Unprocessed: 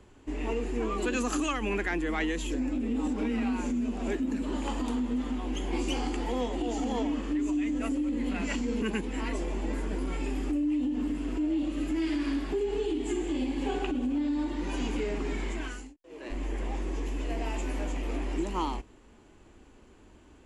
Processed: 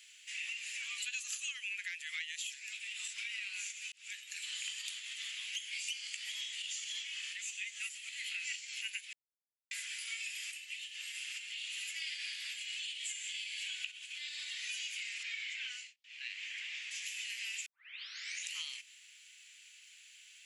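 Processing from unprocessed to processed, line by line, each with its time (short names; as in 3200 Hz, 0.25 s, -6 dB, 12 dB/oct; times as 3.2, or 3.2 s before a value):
3.92–4.5 fade in
9.13–9.71 mute
15.23–16.91 LPF 4200 Hz
17.66 tape start 0.82 s
whole clip: steep high-pass 2200 Hz 36 dB/oct; compressor 6:1, threshold -51 dBFS; gain +12.5 dB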